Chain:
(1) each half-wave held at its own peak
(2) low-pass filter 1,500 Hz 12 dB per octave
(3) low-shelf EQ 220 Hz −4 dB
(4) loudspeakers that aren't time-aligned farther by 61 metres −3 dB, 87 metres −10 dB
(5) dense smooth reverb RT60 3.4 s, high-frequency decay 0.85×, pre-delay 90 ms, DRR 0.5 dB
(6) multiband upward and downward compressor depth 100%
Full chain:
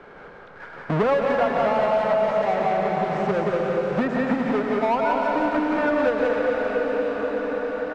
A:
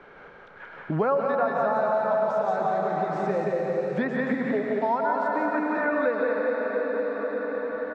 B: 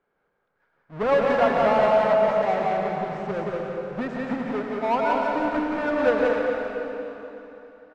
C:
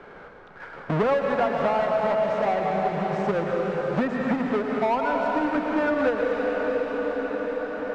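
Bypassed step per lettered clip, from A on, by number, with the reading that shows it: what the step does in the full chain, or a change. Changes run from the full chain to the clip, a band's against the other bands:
1, distortion level −5 dB
6, change in crest factor +2.5 dB
4, change in integrated loudness −2.0 LU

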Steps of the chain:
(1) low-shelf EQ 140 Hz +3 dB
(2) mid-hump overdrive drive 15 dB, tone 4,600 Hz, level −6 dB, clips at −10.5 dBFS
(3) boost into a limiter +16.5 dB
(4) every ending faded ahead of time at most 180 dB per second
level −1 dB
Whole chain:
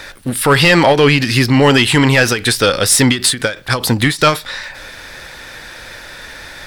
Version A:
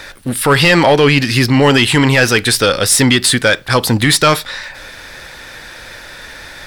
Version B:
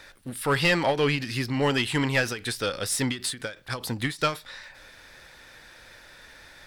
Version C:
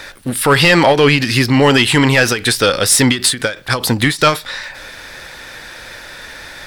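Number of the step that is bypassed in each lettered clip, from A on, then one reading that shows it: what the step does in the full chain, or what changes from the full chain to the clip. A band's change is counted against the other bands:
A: 4, change in momentary loudness spread −12 LU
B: 3, change in crest factor +4.0 dB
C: 1, 125 Hz band −1.5 dB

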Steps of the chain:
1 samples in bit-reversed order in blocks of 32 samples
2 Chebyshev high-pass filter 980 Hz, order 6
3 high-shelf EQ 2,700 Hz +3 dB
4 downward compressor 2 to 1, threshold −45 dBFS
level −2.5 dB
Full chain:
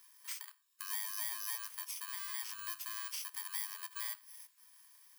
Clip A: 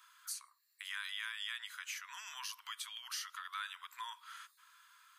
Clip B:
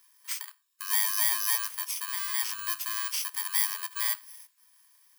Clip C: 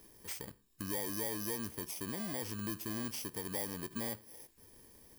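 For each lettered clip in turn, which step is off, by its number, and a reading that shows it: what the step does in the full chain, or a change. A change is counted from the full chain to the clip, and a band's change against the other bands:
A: 1, 8 kHz band −8.0 dB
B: 4, average gain reduction 9.5 dB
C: 2, 1 kHz band +2.5 dB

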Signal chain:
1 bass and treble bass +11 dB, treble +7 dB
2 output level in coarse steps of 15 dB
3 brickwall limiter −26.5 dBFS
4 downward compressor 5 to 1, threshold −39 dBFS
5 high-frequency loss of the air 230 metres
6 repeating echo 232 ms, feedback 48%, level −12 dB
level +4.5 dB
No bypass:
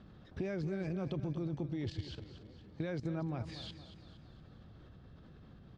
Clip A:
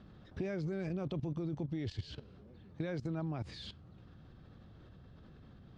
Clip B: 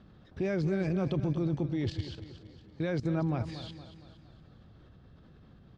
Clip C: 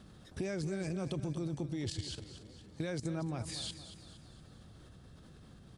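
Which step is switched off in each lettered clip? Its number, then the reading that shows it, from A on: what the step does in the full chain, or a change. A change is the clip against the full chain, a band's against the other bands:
6, echo-to-direct ratio −11.0 dB to none audible
4, average gain reduction 3.0 dB
5, 4 kHz band +6.0 dB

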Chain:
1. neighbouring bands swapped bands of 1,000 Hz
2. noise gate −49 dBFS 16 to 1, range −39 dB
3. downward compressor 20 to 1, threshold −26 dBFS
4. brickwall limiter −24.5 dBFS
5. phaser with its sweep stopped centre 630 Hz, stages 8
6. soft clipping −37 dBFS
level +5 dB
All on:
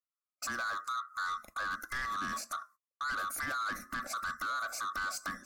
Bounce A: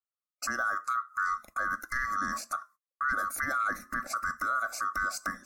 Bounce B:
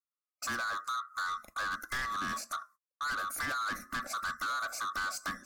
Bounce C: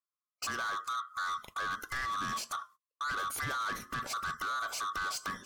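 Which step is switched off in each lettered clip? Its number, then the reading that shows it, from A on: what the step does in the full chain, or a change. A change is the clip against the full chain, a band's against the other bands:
6, distortion level −10 dB
4, average gain reduction 2.0 dB
5, 125 Hz band +5.5 dB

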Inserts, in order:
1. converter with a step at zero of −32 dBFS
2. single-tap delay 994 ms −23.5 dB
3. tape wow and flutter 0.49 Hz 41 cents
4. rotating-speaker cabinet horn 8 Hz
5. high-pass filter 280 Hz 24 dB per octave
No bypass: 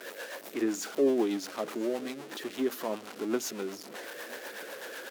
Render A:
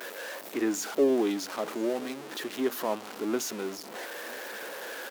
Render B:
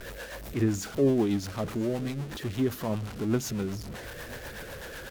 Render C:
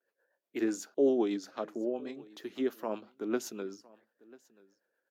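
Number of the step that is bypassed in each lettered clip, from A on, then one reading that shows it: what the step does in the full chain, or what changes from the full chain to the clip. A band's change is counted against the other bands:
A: 4, 1 kHz band +1.5 dB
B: 5, 125 Hz band +22.5 dB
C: 1, distortion level −10 dB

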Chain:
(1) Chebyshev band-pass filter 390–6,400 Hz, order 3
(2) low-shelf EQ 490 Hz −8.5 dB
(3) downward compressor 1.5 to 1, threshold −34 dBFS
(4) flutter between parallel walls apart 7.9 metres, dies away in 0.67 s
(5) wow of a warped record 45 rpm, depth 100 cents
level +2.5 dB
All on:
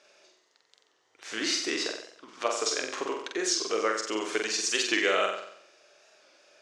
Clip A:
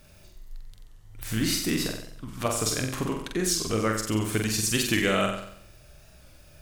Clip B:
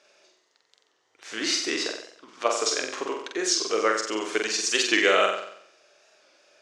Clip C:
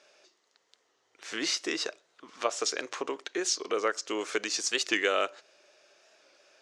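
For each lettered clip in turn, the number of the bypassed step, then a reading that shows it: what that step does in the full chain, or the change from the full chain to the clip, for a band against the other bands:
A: 1, 250 Hz band +8.5 dB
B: 3, average gain reduction 2.5 dB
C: 4, change in momentary loudness spread −4 LU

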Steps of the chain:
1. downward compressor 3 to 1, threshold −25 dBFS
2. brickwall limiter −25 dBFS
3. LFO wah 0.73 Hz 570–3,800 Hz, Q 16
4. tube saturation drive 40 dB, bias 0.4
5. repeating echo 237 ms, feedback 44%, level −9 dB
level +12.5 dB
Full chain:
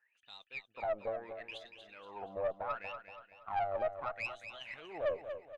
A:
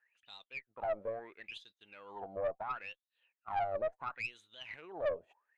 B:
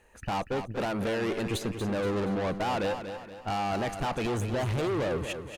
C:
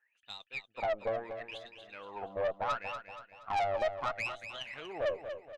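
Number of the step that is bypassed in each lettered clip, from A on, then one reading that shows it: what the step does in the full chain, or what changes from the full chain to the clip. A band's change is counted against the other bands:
5, echo-to-direct ratio −8.0 dB to none audible
3, 250 Hz band +17.5 dB
2, average gain reduction 3.5 dB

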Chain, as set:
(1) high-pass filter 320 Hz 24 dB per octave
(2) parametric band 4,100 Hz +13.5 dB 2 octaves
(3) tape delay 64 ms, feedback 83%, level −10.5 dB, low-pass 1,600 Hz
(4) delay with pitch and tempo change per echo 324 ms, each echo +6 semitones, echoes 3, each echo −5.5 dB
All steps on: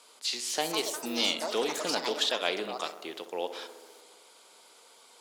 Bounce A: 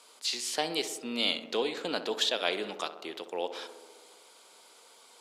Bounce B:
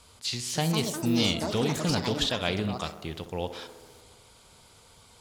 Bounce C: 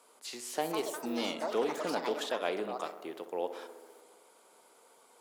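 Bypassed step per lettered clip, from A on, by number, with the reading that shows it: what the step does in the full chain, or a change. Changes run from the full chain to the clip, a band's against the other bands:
4, change in integrated loudness −1.0 LU
1, 125 Hz band +25.0 dB
2, 4 kHz band −11.0 dB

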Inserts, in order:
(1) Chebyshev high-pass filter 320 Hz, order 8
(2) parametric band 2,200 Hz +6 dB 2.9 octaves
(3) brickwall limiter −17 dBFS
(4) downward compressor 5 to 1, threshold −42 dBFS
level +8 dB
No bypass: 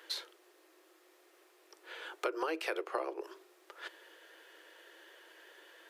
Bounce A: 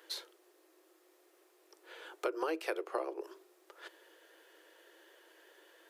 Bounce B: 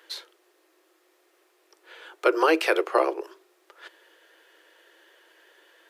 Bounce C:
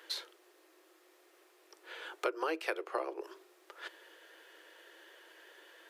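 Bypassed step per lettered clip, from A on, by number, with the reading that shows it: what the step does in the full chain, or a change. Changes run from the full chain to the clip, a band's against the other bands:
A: 2, change in momentary loudness spread −2 LU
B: 4, average gain reduction 8.0 dB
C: 3, change in crest factor +2.5 dB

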